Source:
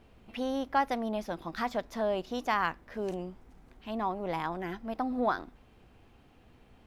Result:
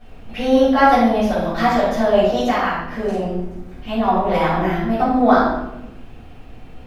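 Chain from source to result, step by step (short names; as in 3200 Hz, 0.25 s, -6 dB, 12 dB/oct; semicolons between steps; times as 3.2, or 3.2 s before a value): 2.39–4.04 compressor 4:1, threshold -31 dBFS, peak gain reduction 7 dB; shoebox room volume 330 m³, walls mixed, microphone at 6.2 m; gain +1 dB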